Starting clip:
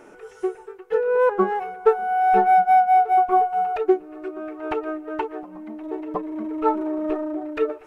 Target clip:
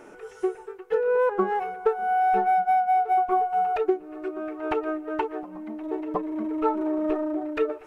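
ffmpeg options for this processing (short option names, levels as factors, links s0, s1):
-af "acompressor=threshold=0.112:ratio=6"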